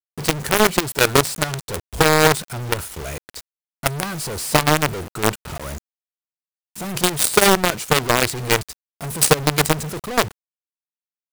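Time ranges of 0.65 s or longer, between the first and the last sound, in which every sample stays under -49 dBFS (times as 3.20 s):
5.78–6.76 s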